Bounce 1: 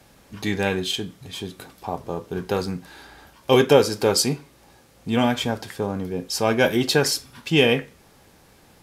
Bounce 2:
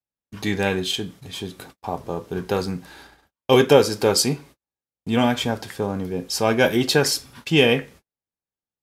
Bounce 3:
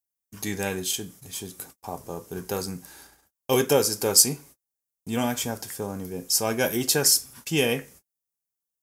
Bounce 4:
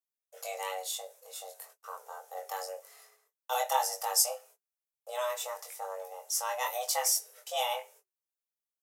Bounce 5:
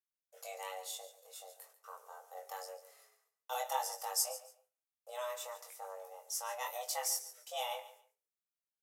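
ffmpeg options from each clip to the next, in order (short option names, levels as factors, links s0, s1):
-af "agate=range=0.00501:threshold=0.00631:ratio=16:detection=peak,volume=1.12"
-af "aexciter=amount=6.3:drive=2.8:freq=5400,volume=0.447"
-af "flanger=delay=20:depth=2.3:speed=0.99,afreqshift=370,volume=0.531"
-af "aecho=1:1:142|284:0.178|0.0373,volume=0.422"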